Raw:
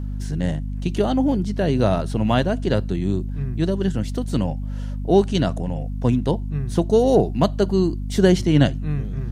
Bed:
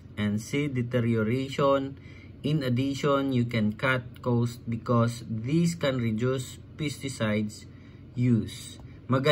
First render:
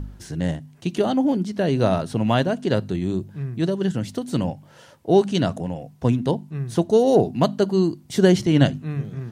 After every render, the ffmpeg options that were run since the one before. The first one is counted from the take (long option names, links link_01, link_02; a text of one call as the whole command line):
ffmpeg -i in.wav -af "bandreject=frequency=50:width_type=h:width=4,bandreject=frequency=100:width_type=h:width=4,bandreject=frequency=150:width_type=h:width=4,bandreject=frequency=200:width_type=h:width=4,bandreject=frequency=250:width_type=h:width=4" out.wav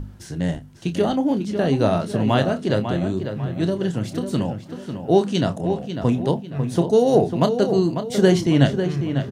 ffmpeg -i in.wav -filter_complex "[0:a]asplit=2[link_01][link_02];[link_02]adelay=29,volume=-10dB[link_03];[link_01][link_03]amix=inputs=2:normalize=0,asplit=2[link_04][link_05];[link_05]adelay=547,lowpass=frequency=3400:poles=1,volume=-8dB,asplit=2[link_06][link_07];[link_07]adelay=547,lowpass=frequency=3400:poles=1,volume=0.4,asplit=2[link_08][link_09];[link_09]adelay=547,lowpass=frequency=3400:poles=1,volume=0.4,asplit=2[link_10][link_11];[link_11]adelay=547,lowpass=frequency=3400:poles=1,volume=0.4,asplit=2[link_12][link_13];[link_13]adelay=547,lowpass=frequency=3400:poles=1,volume=0.4[link_14];[link_04][link_06][link_08][link_10][link_12][link_14]amix=inputs=6:normalize=0" out.wav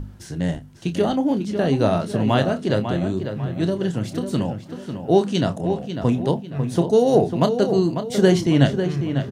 ffmpeg -i in.wav -af anull out.wav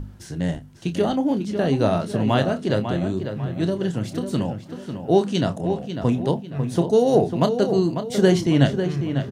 ffmpeg -i in.wav -af "volume=-1dB" out.wav